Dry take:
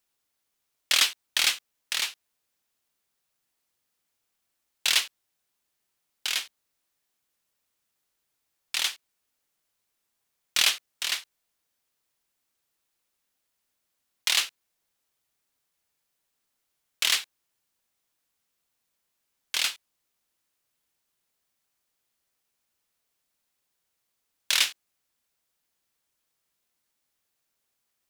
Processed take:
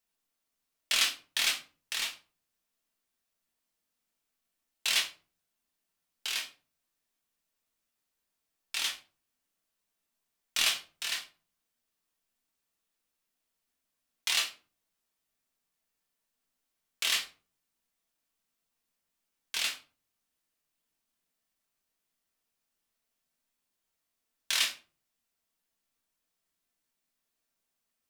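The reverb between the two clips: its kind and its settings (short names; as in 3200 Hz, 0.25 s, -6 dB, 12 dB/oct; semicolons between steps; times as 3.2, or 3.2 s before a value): shoebox room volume 220 m³, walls furnished, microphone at 1.6 m; gain -7 dB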